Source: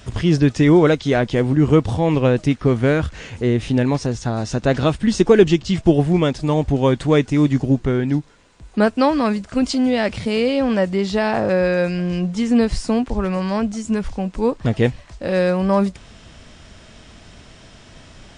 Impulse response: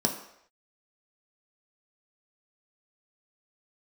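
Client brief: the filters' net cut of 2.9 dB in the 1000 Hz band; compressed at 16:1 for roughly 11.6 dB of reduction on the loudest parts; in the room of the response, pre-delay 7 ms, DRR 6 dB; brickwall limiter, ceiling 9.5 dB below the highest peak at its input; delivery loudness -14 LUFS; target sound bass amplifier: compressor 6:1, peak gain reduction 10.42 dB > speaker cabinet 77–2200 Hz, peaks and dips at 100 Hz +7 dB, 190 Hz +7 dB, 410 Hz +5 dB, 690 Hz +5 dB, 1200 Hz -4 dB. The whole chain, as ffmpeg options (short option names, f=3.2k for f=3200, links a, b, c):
-filter_complex "[0:a]equalizer=f=1k:t=o:g=-6.5,acompressor=threshold=-19dB:ratio=16,alimiter=limit=-19.5dB:level=0:latency=1,asplit=2[a][b];[1:a]atrim=start_sample=2205,adelay=7[c];[b][c]afir=irnorm=-1:irlink=0,volume=-15dB[d];[a][d]amix=inputs=2:normalize=0,acompressor=threshold=-27dB:ratio=6,highpass=f=77:w=0.5412,highpass=f=77:w=1.3066,equalizer=f=100:t=q:w=4:g=7,equalizer=f=190:t=q:w=4:g=7,equalizer=f=410:t=q:w=4:g=5,equalizer=f=690:t=q:w=4:g=5,equalizer=f=1.2k:t=q:w=4:g=-4,lowpass=f=2.2k:w=0.5412,lowpass=f=2.2k:w=1.3066,volume=13.5dB"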